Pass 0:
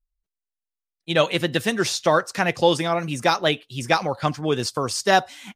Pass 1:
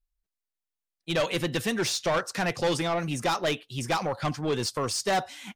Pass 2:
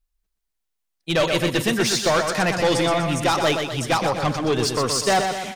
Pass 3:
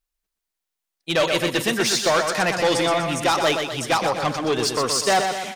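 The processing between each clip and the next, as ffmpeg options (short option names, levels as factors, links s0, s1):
-af "asoftclip=type=tanh:threshold=0.106,volume=0.841"
-af "aecho=1:1:123|246|369|492|615|738:0.501|0.251|0.125|0.0626|0.0313|0.0157,volume=2"
-af "lowshelf=f=160:g=-12,volume=1.12"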